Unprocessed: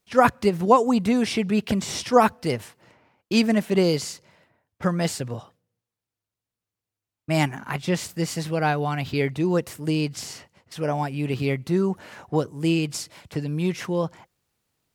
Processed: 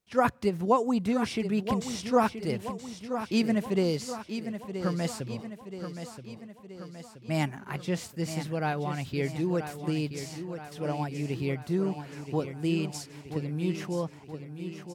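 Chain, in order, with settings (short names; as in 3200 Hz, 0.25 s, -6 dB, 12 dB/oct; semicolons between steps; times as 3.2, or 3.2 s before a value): low shelf 500 Hz +3 dB; on a send: feedback echo 0.976 s, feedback 55%, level -9.5 dB; on the sum: gain -8.5 dB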